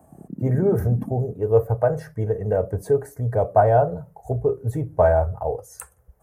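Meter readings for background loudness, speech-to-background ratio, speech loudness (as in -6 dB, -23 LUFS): -33.5 LUFS, 11.5 dB, -22.0 LUFS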